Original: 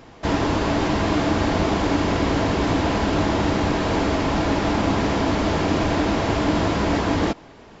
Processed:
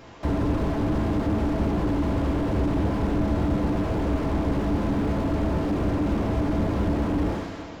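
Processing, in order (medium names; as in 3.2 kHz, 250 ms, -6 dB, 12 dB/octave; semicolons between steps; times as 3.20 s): two-slope reverb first 0.36 s, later 2.5 s, from -15 dB, DRR 0.5 dB; slew-rate limiter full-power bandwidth 32 Hz; trim -2 dB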